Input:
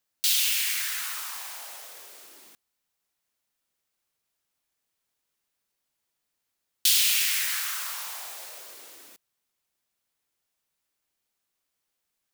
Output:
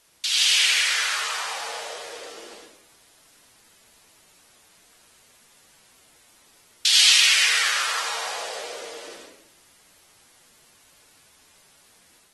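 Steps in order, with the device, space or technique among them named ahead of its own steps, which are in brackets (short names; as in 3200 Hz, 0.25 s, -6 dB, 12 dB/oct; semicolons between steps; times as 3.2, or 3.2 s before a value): filmed off a television (BPF 190–6400 Hz; bell 490 Hz +9 dB 0.59 oct; reverb RT60 0.75 s, pre-delay 72 ms, DRR -4.5 dB; white noise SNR 28 dB; AGC gain up to 4 dB; AAC 32 kbps 48000 Hz)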